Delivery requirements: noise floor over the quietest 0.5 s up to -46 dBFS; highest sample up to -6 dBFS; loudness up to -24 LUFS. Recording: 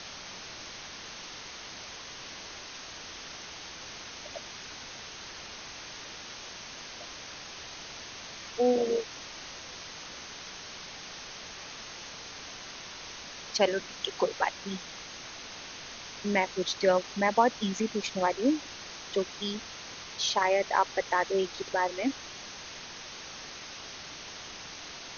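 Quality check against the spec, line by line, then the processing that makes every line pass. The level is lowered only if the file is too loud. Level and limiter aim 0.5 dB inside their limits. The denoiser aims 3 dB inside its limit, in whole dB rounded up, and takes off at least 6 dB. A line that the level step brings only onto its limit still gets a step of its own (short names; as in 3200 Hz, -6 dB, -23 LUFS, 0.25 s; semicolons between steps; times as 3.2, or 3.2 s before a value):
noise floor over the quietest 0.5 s -44 dBFS: fail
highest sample -9.5 dBFS: OK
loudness -33.5 LUFS: OK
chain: denoiser 6 dB, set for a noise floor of -44 dBFS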